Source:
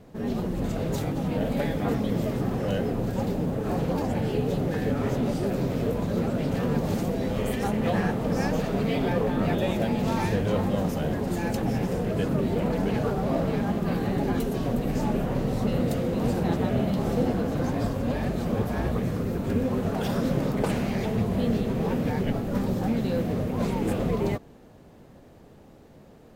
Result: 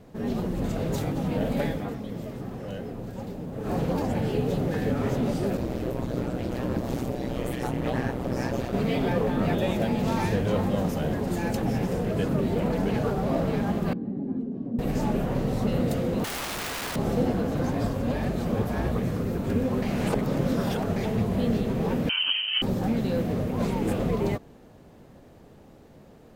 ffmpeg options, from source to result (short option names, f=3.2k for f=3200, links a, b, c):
-filter_complex "[0:a]asplit=3[a][b][c];[a]afade=t=out:st=5.57:d=0.02[d];[b]aeval=exprs='val(0)*sin(2*PI*62*n/s)':c=same,afade=t=in:st=5.57:d=0.02,afade=t=out:st=8.72:d=0.02[e];[c]afade=t=in:st=8.72:d=0.02[f];[d][e][f]amix=inputs=3:normalize=0,asettb=1/sr,asplit=3[g][h][i];[g]atrim=end=13.934[j];[h]atrim=start=13.93:end=14.79,asetpts=PTS-STARTPTS,afade=t=in:d=0.004:c=qsin,afade=t=out:st=0.856:d=0.004:c=qsin,bandpass=f=240:t=q:w=2.8[k];[i]atrim=start=14.786[l];[j][k]acrossfade=d=0.004:c1=hsin:c2=qsin[m];[m][l]acrossfade=d=0.004:c1=qsin:c2=hsin,asettb=1/sr,asplit=3[n][o][p];[n]atrim=end=16.244[q];[o]atrim=start=16.24:end=16.96,asetpts=PTS-STARTPTS,afade=t=in:d=0.004:c=qsin,afade=t=out:st=0.716:d=0.004:c=qsin,aeval=exprs='(mod(23.7*val(0)+1,2)-1)/23.7':c=same[r];[p]atrim=start=16.956[s];[q][r]acrossfade=d=0.004:c1=hsin:c2=qsin[t];[t][s]acrossfade=d=0.004:c1=qsin:c2=hsin,asettb=1/sr,asplit=3[u][v][w];[u]atrim=end=22.094[x];[v]atrim=start=22.09:end=22.62,asetpts=PTS-STARTPTS,afade=t=in:d=0.004:c=qsin,afade=t=out:st=0.526:d=0.004:c=qsin,lowpass=f=2.7k:t=q:w=0.5098,lowpass=f=2.7k:t=q:w=0.6013,lowpass=f=2.7k:t=q:w=0.9,lowpass=f=2.7k:t=q:w=2.563,afreqshift=-3200[y];[w]atrim=start=22.616[z];[x][y]acrossfade=d=0.004:c1=hsin:c2=qsin[aa];[aa][z]acrossfade=d=0.004:c1=qsin:c2=hsin,asplit=5[ab][ac][ad][ae][af];[ab]atrim=end=1.91,asetpts=PTS-STARTPTS,afade=t=out:st=1.66:d=0.25:silence=0.375837[ag];[ac]atrim=start=1.91:end=3.51,asetpts=PTS-STARTPTS,volume=-8.5dB[ah];[ad]atrim=start=3.51:end=19.822,asetpts=PTS-STARTPTS,afade=t=in:d=0.25:silence=0.375837[ai];[ae]atrim=start=19.818:end=20.962,asetpts=PTS-STARTPTS,areverse[aj];[af]atrim=start=20.958[ak];[ag][ah][ai]concat=n=3:v=0:a=1[al];[al][aj]acrossfade=d=0.004:c1=hsin:c2=hsin[am];[am][ak]acrossfade=d=0.004:c1=hsin:c2=hsin"